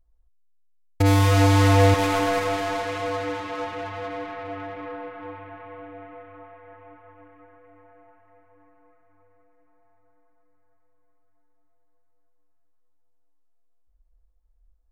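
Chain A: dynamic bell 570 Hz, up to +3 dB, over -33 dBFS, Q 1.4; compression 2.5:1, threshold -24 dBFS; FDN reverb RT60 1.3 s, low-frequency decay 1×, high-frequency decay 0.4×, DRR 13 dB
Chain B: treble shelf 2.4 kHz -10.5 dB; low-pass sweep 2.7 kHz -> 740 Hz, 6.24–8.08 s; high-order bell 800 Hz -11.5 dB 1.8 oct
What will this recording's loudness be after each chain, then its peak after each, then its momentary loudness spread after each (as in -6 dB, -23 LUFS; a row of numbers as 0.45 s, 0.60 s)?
-27.0 LUFS, -23.0 LUFS; -12.0 dBFS, -9.0 dBFS; 20 LU, 21 LU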